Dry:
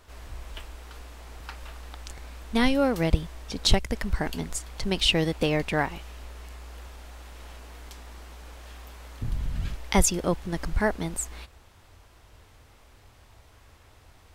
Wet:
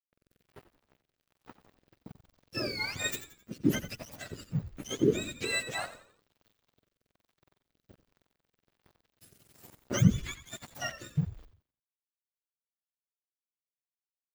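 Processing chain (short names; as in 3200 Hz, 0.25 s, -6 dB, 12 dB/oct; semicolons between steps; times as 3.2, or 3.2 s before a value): spectrum mirrored in octaves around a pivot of 1100 Hz; bell 2100 Hz +3 dB 2.5 oct; crossover distortion -38 dBFS; rotary speaker horn 1.2 Hz; frequency-shifting echo 87 ms, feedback 39%, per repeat -61 Hz, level -13 dB; gain -4.5 dB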